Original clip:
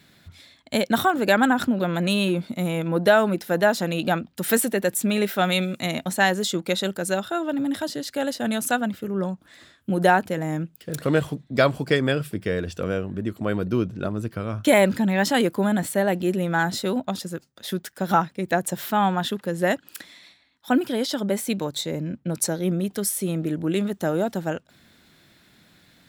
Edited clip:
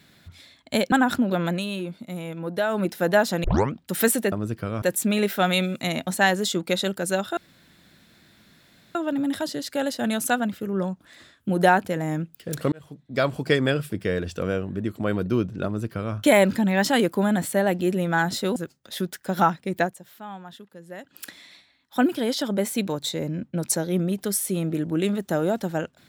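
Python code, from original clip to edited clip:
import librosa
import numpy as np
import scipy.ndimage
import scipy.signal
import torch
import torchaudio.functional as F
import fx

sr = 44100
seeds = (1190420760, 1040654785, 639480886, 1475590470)

y = fx.edit(x, sr, fx.cut(start_s=0.92, length_s=0.49),
    fx.fade_down_up(start_s=1.97, length_s=1.36, db=-8.0, fade_s=0.15),
    fx.tape_start(start_s=3.93, length_s=0.29),
    fx.insert_room_tone(at_s=7.36, length_s=1.58),
    fx.fade_in_span(start_s=11.13, length_s=0.8),
    fx.duplicate(start_s=14.06, length_s=0.5, to_s=4.81),
    fx.cut(start_s=16.97, length_s=0.31),
    fx.fade_down_up(start_s=18.53, length_s=1.36, db=-17.5, fade_s=0.14), tone=tone)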